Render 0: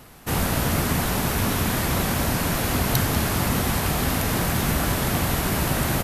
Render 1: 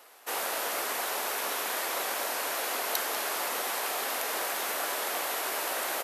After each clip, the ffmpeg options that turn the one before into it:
-af "highpass=f=450:w=0.5412,highpass=f=450:w=1.3066,volume=0.562"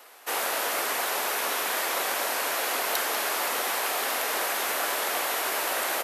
-filter_complex "[0:a]acrossover=split=150|680|2600[s0][s1][s2][s3];[s2]crystalizer=i=2.5:c=0[s4];[s3]asoftclip=type=tanh:threshold=0.0891[s5];[s0][s1][s4][s5]amix=inputs=4:normalize=0,volume=1.5"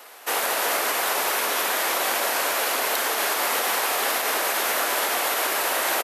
-filter_complex "[0:a]alimiter=limit=0.1:level=0:latency=1:release=76,asplit=2[s0][s1];[s1]aecho=0:1:55.39|227.4:0.282|0.282[s2];[s0][s2]amix=inputs=2:normalize=0,volume=1.88"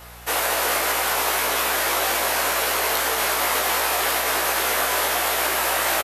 -filter_complex "[0:a]aeval=exprs='val(0)+0.00398*(sin(2*PI*60*n/s)+sin(2*PI*2*60*n/s)/2+sin(2*PI*3*60*n/s)/3+sin(2*PI*4*60*n/s)/4+sin(2*PI*5*60*n/s)/5)':c=same,asplit=2[s0][s1];[s1]adelay=18,volume=0.75[s2];[s0][s2]amix=inputs=2:normalize=0"

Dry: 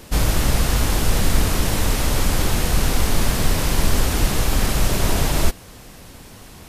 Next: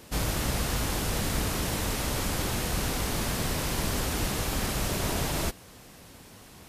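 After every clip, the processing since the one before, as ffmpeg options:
-af "highpass=f=80:p=1,volume=0.447"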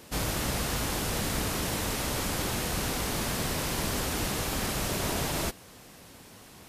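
-af "lowshelf=f=92:g=-6"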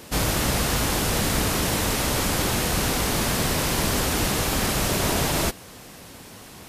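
-af "acontrast=89"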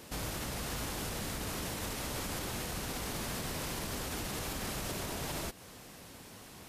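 -af "alimiter=limit=0.0944:level=0:latency=1:release=155,volume=0.398"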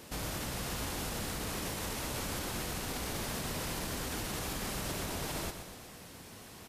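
-af "aecho=1:1:120|240|360|480|600|720|840:0.355|0.199|0.111|0.0623|0.0349|0.0195|0.0109"

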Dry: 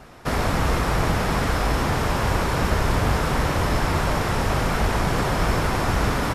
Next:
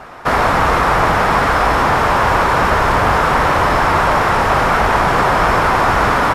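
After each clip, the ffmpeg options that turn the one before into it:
-filter_complex "[0:a]equalizer=f=1100:t=o:w=2.7:g=13.5,asplit=2[s0][s1];[s1]asoftclip=type=hard:threshold=0.188,volume=0.316[s2];[s0][s2]amix=inputs=2:normalize=0,volume=0.891"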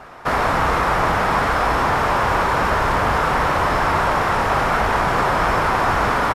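-filter_complex "[0:a]asplit=2[s0][s1];[s1]adelay=33,volume=0.224[s2];[s0][s2]amix=inputs=2:normalize=0,volume=0.562"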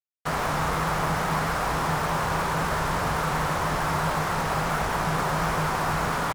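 -af "acrusher=bits=3:mix=0:aa=0.5,equalizer=f=160:w=7:g=15,volume=0.376"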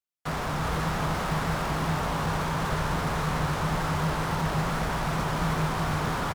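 -filter_complex "[0:a]acrossover=split=340[s0][s1];[s1]asoftclip=type=tanh:threshold=0.0316[s2];[s0][s2]amix=inputs=2:normalize=0,aecho=1:1:378:0.596"

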